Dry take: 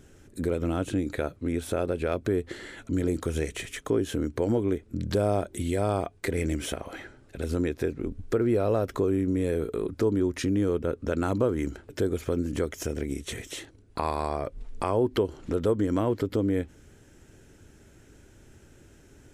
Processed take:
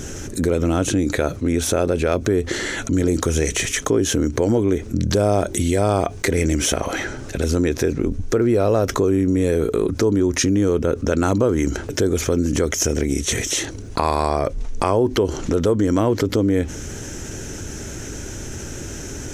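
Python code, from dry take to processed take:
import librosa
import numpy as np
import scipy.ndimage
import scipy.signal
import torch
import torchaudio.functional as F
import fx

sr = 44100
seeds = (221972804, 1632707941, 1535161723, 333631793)

y = fx.peak_eq(x, sr, hz=6100.0, db=11.5, octaves=0.45)
y = fx.env_flatten(y, sr, amount_pct=50)
y = y * librosa.db_to_amplitude(5.5)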